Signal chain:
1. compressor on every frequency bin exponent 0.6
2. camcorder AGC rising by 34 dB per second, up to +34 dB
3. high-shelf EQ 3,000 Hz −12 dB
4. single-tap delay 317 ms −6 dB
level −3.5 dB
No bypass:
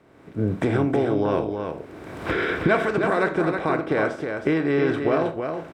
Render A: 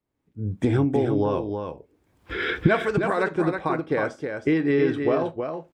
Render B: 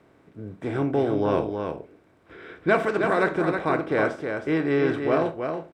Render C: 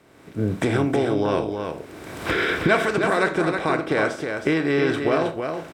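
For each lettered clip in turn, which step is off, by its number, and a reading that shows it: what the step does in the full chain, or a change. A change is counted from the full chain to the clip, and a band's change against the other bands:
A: 1, 125 Hz band +2.5 dB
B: 2, change in momentary loudness spread +2 LU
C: 3, 4 kHz band +6.5 dB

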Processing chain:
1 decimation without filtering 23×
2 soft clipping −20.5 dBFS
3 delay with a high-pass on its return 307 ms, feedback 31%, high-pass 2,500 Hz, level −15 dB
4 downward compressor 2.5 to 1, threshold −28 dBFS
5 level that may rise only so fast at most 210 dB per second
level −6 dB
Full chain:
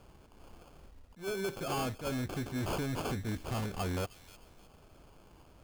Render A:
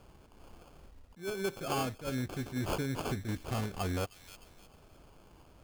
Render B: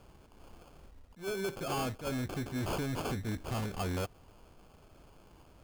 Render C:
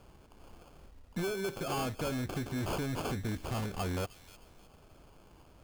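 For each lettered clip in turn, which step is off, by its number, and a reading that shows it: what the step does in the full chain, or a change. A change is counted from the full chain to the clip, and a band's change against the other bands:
2, distortion level −11 dB
3, change in momentary loudness spread −3 LU
5, change in momentary loudness spread −3 LU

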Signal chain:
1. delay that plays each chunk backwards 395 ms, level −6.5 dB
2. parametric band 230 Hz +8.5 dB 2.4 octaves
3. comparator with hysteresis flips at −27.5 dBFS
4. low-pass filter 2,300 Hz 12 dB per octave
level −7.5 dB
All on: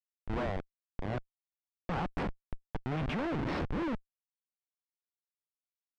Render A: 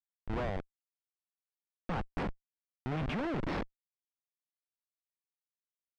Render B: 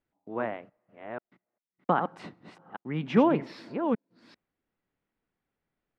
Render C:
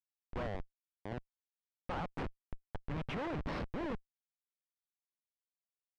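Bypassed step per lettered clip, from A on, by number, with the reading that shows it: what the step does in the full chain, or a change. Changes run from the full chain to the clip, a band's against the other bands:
1, change in crest factor +1.5 dB
3, change in crest factor +11.5 dB
2, change in integrated loudness −5.5 LU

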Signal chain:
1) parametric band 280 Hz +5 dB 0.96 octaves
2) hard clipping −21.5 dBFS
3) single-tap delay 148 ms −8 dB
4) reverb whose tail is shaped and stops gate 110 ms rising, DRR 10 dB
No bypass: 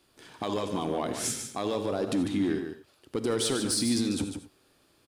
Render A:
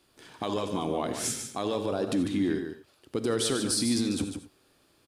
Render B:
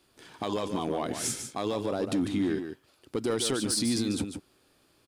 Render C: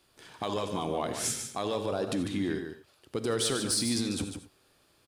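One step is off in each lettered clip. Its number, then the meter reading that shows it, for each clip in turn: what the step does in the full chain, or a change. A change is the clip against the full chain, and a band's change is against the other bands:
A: 2, distortion level −23 dB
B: 4, echo-to-direct ratio −5.5 dB to −8.0 dB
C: 1, 250 Hz band −4.0 dB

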